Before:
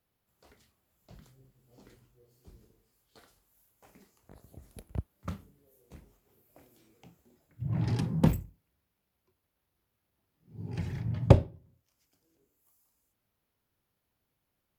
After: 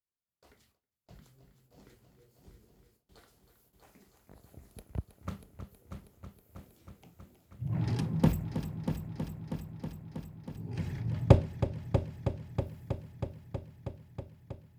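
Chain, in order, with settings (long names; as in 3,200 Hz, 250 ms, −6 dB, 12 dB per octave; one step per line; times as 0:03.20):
echo machine with several playback heads 320 ms, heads first and second, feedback 73%, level −11.5 dB
noise gate with hold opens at −55 dBFS
level −1.5 dB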